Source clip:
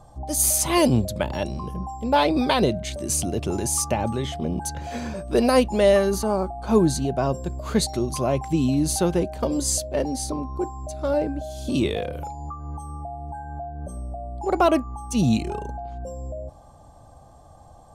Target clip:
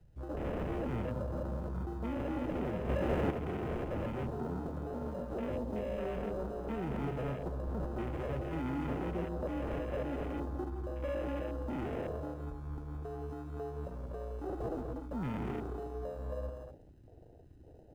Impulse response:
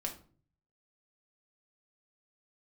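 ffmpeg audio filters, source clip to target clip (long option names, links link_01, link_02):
-filter_complex "[0:a]acrusher=samples=39:mix=1:aa=0.000001,acrossover=split=160[link_01][link_02];[link_02]acompressor=threshold=-20dB:ratio=6[link_03];[link_01][link_03]amix=inputs=2:normalize=0,alimiter=limit=-15.5dB:level=0:latency=1:release=45,equalizer=frequency=490:width_type=o:width=0.96:gain=4.5,asoftclip=type=tanh:threshold=-23.5dB,asplit=2[link_04][link_05];[link_05]aecho=0:1:134.1|169.1|244.9:0.251|0.398|0.447[link_06];[link_04][link_06]amix=inputs=2:normalize=0,asettb=1/sr,asplit=3[link_07][link_08][link_09];[link_07]atrim=end=2.894[link_10];[link_08]atrim=start=2.89:end=3.31,asetpts=PTS-STARTPTS,afade=type=in:duration=0.004:curve=qsin,afade=type=out:start_time=0.416:duration=0.004:curve=qsin,acontrast=54[link_11];[link_09]atrim=start=3.306[link_12];[link_10][link_11]acrossfade=duration=0.004:curve1=hsin:curve2=qsin[link_13];[link_13][link_12]acrossfade=duration=0.004:curve1=qsin:curve2=hsin,afwtdn=0.0126,asettb=1/sr,asplit=3[link_14][link_15][link_16];[link_14]atrim=end=5.524[link_17];[link_15]atrim=start=5.52:end=5.98,asetpts=PTS-STARTPTS,afade=type=in:duration=0.004:curve=qsin,afade=type=out:start_time=0.456:duration=0.004:curve=qsin,equalizer=frequency=1400:width_type=o:width=0.62:gain=-9.5[link_18];[link_16]atrim=start=5.976[link_19];[link_17][link_18]acrossfade=duration=0.004:curve1=hsin:curve2=qsin[link_20];[link_20][link_19]acrossfade=duration=0.004:curve1=qsin:curve2=hsin,volume=-9dB"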